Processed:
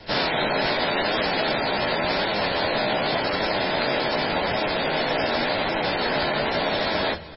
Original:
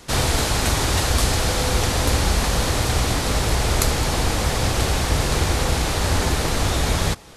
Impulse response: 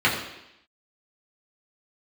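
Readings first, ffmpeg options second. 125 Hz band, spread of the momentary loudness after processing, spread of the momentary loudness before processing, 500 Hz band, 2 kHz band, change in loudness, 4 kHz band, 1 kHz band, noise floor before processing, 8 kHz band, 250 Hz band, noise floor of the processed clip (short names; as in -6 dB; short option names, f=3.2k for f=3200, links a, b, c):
-14.5 dB, 1 LU, 2 LU, +2.5 dB, +2.0 dB, -2.5 dB, -1.5 dB, +1.0 dB, -24 dBFS, under -40 dB, -2.5 dB, -26 dBFS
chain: -filter_complex "[0:a]acrossover=split=250[a][b];[a]alimiter=limit=-17dB:level=0:latency=1:release=94[c];[c][b]amix=inputs=2:normalize=0,bandreject=f=1.2k:w=6.9,asplit=2[d][e];[1:a]atrim=start_sample=2205,asetrate=40131,aresample=44100,lowshelf=f=110:g=-4.5[f];[e][f]afir=irnorm=-1:irlink=0,volume=-32dB[g];[d][g]amix=inputs=2:normalize=0,aeval=exprs='clip(val(0),-1,0.158)':c=same,flanger=delay=9:depth=6:regen=26:speed=0.87:shape=triangular,lowpass=6.2k,afftfilt=real='re*lt(hypot(re,im),0.178)':imag='im*lt(hypot(re,im),0.178)':win_size=1024:overlap=0.75,acontrast=28,equalizer=f=610:w=4.8:g=7,aecho=1:1:307|614:0.0794|0.027" -ar 16000 -c:a libmp3lame -b:a 16k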